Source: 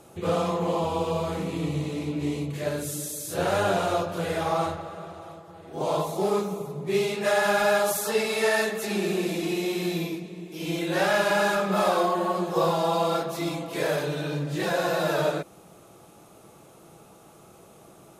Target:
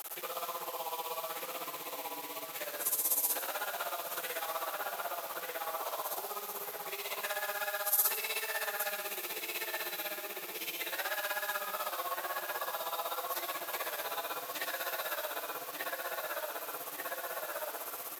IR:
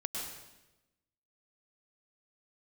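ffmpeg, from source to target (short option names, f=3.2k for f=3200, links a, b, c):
-filter_complex "[0:a]asplit=2[a][b];[b]adelay=1192,lowpass=f=2.3k:p=1,volume=-5dB,asplit=2[c][d];[d]adelay=1192,lowpass=f=2.3k:p=1,volume=0.48,asplit=2[e][f];[f]adelay=1192,lowpass=f=2.3k:p=1,volume=0.48,asplit=2[g][h];[h]adelay=1192,lowpass=f=2.3k:p=1,volume=0.48,asplit=2[i][j];[j]adelay=1192,lowpass=f=2.3k:p=1,volume=0.48,asplit=2[k][l];[l]adelay=1192,lowpass=f=2.3k:p=1,volume=0.48[m];[a][c][e][g][i][k][m]amix=inputs=7:normalize=0,alimiter=limit=-21dB:level=0:latency=1:release=233,tremolo=f=16:d=0.86,acompressor=threshold=-40dB:ratio=8,asplit=2[n][o];[1:a]atrim=start_sample=2205,asetrate=57330,aresample=44100[p];[o][p]afir=irnorm=-1:irlink=0,volume=-5.5dB[q];[n][q]amix=inputs=2:normalize=0,acrusher=bits=8:mix=0:aa=0.000001,highpass=940,equalizer=f=13k:t=o:w=0.31:g=15,volume=8.5dB"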